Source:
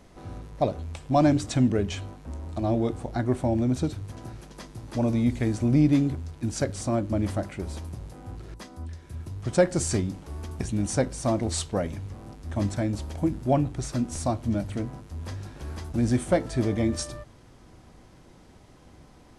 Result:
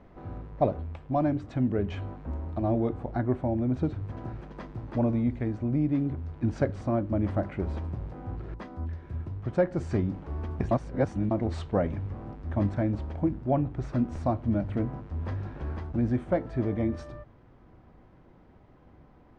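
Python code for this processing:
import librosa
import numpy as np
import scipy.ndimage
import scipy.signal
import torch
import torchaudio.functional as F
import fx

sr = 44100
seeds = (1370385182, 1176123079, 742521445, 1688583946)

y = fx.edit(x, sr, fx.reverse_span(start_s=10.71, length_s=0.6), tone=tone)
y = scipy.signal.sosfilt(scipy.signal.butter(2, 1800.0, 'lowpass', fs=sr, output='sos'), y)
y = fx.rider(y, sr, range_db=5, speed_s=0.5)
y = F.gain(torch.from_numpy(y), -2.0).numpy()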